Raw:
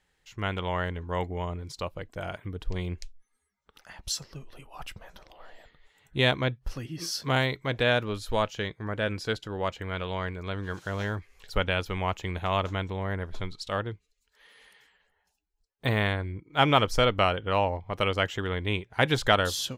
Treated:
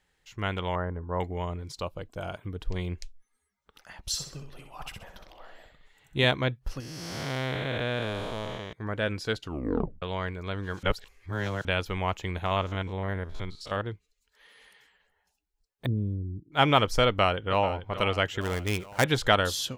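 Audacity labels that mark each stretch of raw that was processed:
0.750000	1.200000	LPF 1400 Hz 24 dB/oct
1.810000	2.480000	bell 1900 Hz -9 dB 0.41 oct
4.040000	6.250000	feedback echo 64 ms, feedback 35%, level -6.5 dB
6.800000	8.730000	time blur width 0.45 s
9.410000	9.410000	tape stop 0.61 s
10.830000	11.650000	reverse
12.460000	13.850000	stepped spectrum every 50 ms
15.860000	16.520000	inverse Chebyshev low-pass stop band from 680 Hz
17.060000	17.660000	echo throw 0.44 s, feedback 55%, level -12.5 dB
18.410000	19.040000	switching dead time of 0.089 ms

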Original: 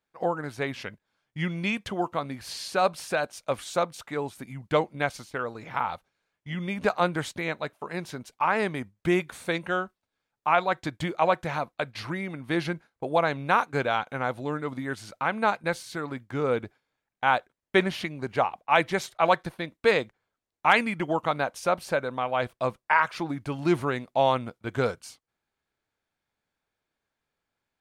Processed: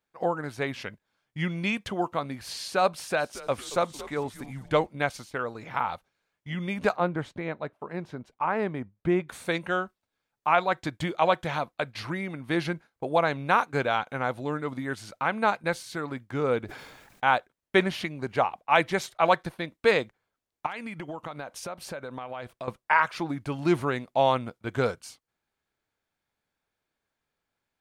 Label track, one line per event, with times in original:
2.960000	4.870000	frequency-shifting echo 0.226 s, feedback 47%, per repeat -130 Hz, level -16 dB
6.960000	9.290000	LPF 1000 Hz 6 dB/oct
11.080000	11.670000	bell 3300 Hz +8.5 dB 0.29 oct
16.650000	17.340000	sustainer at most 40 dB/s
20.660000	22.680000	compressor, threshold -33 dBFS

